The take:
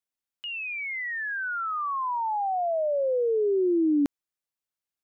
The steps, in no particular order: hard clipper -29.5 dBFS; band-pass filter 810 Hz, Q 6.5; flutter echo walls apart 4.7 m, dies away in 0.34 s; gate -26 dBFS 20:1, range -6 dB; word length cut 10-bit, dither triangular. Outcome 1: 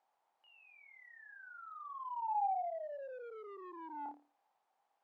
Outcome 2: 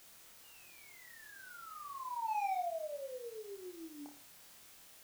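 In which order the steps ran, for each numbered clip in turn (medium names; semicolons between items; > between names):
gate > flutter echo > word length cut > hard clipper > band-pass filter; band-pass filter > hard clipper > gate > word length cut > flutter echo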